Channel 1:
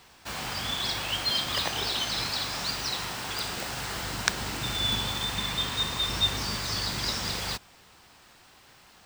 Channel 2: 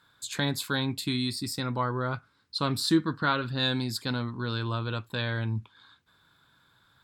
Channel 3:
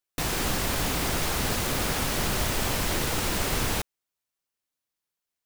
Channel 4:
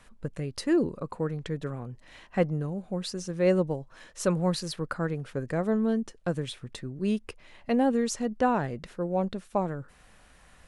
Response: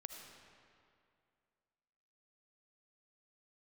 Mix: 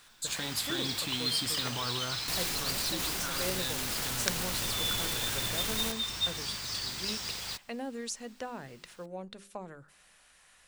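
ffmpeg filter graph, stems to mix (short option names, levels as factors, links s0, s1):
-filter_complex "[0:a]volume=0.237[s0];[1:a]volume=0.531[s1];[2:a]adelay=2100,volume=0.596[s2];[3:a]lowshelf=f=470:g=-10,bandreject=f=50:t=h:w=6,bandreject=f=100:t=h:w=6,bandreject=f=150:t=h:w=6,bandreject=f=200:t=h:w=6,bandreject=f=250:t=h:w=6,bandreject=f=300:t=h:w=6,bandreject=f=350:t=h:w=6,bandreject=f=400:t=h:w=6,acrossover=split=450[s3][s4];[s4]acompressor=threshold=0.0141:ratio=4[s5];[s3][s5]amix=inputs=2:normalize=0,volume=0.447,asplit=2[s6][s7];[s7]volume=0.075[s8];[s1][s2]amix=inputs=2:normalize=0,alimiter=level_in=2.11:limit=0.0631:level=0:latency=1,volume=0.473,volume=1[s9];[4:a]atrim=start_sample=2205[s10];[s8][s10]afir=irnorm=-1:irlink=0[s11];[s0][s6][s9][s11]amix=inputs=4:normalize=0,highshelf=f=2000:g=9.5"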